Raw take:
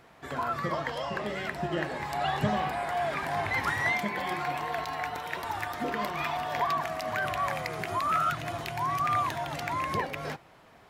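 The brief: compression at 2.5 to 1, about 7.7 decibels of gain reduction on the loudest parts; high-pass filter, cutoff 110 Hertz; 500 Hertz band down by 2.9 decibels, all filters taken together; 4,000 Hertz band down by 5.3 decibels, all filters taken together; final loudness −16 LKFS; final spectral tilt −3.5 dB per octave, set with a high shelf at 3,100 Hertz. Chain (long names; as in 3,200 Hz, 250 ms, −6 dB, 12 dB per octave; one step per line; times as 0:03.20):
high-pass filter 110 Hz
parametric band 500 Hz −4 dB
high-shelf EQ 3,100 Hz −3 dB
parametric band 4,000 Hz −5 dB
downward compressor 2.5 to 1, threshold −36 dBFS
level +21.5 dB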